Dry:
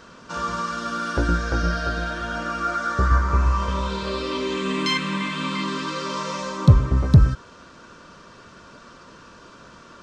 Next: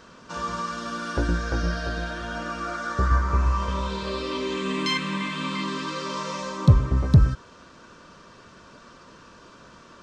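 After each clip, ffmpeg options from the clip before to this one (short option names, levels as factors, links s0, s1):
-af "bandreject=f=1400:w=27,volume=0.75"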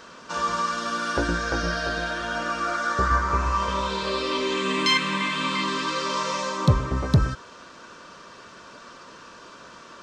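-af "lowshelf=f=230:g=-12,volume=1.88"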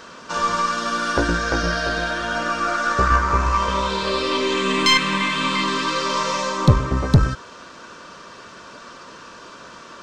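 -af "aeval=exprs='0.501*(cos(1*acos(clip(val(0)/0.501,-1,1)))-cos(1*PI/2))+0.0398*(cos(4*acos(clip(val(0)/0.501,-1,1)))-cos(4*PI/2))':c=same,volume=1.68"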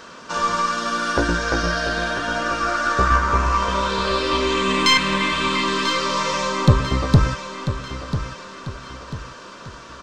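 -af "aecho=1:1:993|1986|2979|3972:0.299|0.125|0.0527|0.0221"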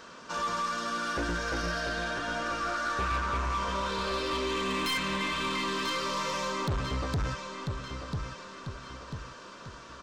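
-af "asoftclip=type=tanh:threshold=0.119,volume=0.422"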